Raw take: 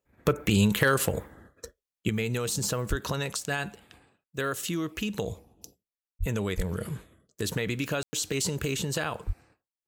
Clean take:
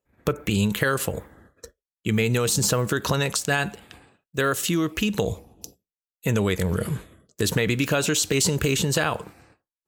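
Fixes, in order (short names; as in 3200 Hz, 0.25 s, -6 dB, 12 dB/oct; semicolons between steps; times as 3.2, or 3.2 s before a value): clip repair -12.5 dBFS; de-plosive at 2.89/6.19/6.56/9.26; room tone fill 8.03–8.13; gain 0 dB, from 2.09 s +7.5 dB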